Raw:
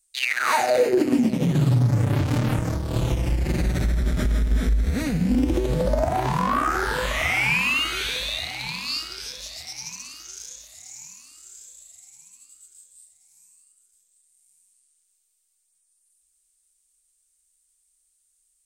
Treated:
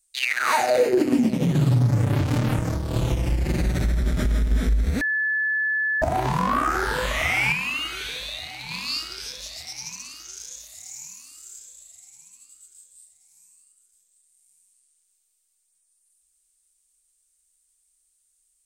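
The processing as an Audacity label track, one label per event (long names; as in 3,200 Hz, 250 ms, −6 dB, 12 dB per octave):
5.010000	6.020000	beep over 1,730 Hz −20.5 dBFS
7.520000	8.710000	tuned comb filter 150 Hz, decay 0.18 s
10.520000	11.590000	high-shelf EQ 9,600 Hz +8 dB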